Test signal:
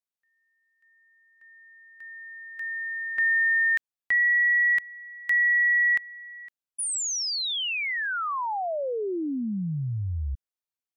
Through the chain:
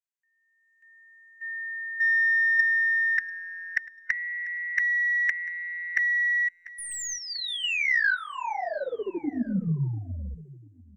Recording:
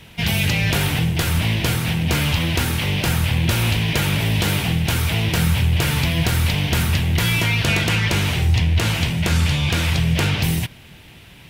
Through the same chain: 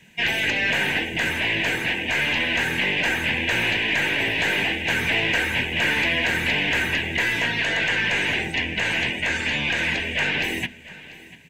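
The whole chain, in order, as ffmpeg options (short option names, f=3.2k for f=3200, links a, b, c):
-filter_complex "[0:a]bandreject=f=50:t=h:w=6,bandreject=f=100:t=h:w=6,bandreject=f=150:t=h:w=6,bandreject=f=200:t=h:w=6,bandreject=f=250:t=h:w=6,bandreject=f=300:t=h:w=6,afftdn=nr=13:nf=-35,lowshelf=f=150:t=q:w=1.5:g=-13.5,afftfilt=real='re*lt(hypot(re,im),0.316)':imag='im*lt(hypot(re,im),0.316)':win_size=1024:overlap=0.75,superequalizer=10b=0.447:11b=2.82:12b=2:15b=2.82,aeval=exprs='0.596*(cos(1*acos(clip(val(0)/0.596,-1,1)))-cos(1*PI/2))+0.0596*(cos(2*acos(clip(val(0)/0.596,-1,1)))-cos(2*PI/2))+0.00596*(cos(6*acos(clip(val(0)/0.596,-1,1)))-cos(6*PI/2))':c=same,asplit=2[a][b];[b]alimiter=limit=-10dB:level=0:latency=1:release=372,volume=-0.5dB[c];[a][c]amix=inputs=2:normalize=0,dynaudnorm=f=220:g=7:m=11.5dB,asoftclip=type=tanh:threshold=-6.5dB,acrossover=split=3700[d][e];[e]acompressor=threshold=-36dB:ratio=4:attack=1:release=60[f];[d][f]amix=inputs=2:normalize=0,aecho=1:1:693|1386:0.112|0.0314,volume=-5dB"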